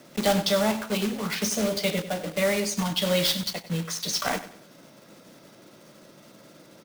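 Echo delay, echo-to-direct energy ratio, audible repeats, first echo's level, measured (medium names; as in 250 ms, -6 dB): 96 ms, -13.5 dB, 3, -14.0 dB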